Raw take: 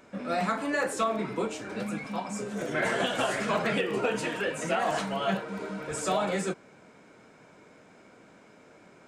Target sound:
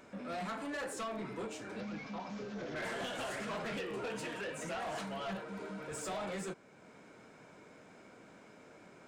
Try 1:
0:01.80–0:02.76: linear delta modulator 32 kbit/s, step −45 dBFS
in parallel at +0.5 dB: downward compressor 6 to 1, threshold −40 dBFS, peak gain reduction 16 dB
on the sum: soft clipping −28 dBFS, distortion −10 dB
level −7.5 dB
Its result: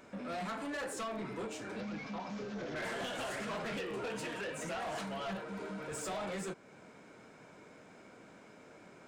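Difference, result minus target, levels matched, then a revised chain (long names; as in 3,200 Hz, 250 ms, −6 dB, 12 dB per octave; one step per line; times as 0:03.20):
downward compressor: peak gain reduction −10 dB
0:01.80–0:02.76: linear delta modulator 32 kbit/s, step −45 dBFS
in parallel at +0.5 dB: downward compressor 6 to 1, threshold −52 dBFS, peak gain reduction 26 dB
on the sum: soft clipping −28 dBFS, distortion −10 dB
level −7.5 dB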